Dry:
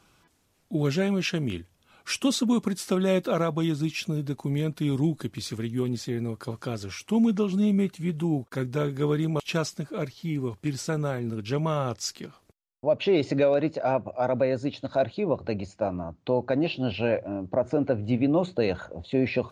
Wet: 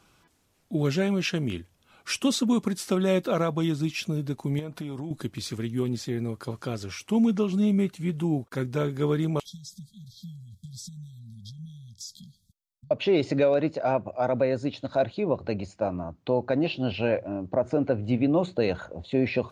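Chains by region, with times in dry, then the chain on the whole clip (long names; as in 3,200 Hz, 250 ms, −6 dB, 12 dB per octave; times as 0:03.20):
0:04.59–0:05.11: parametric band 840 Hz +8 dB 1.9 octaves + downward compressor 12 to 1, threshold −30 dBFS
0:09.45–0:12.91: downward compressor, threshold −36 dBFS + linear-phase brick-wall band-stop 220–3,200 Hz
whole clip: no processing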